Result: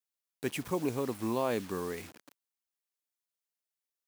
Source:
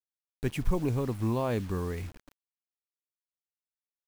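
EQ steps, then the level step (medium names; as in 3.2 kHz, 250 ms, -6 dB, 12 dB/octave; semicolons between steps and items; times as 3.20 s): high-pass 240 Hz 12 dB/octave; treble shelf 4.4 kHz +5 dB; 0.0 dB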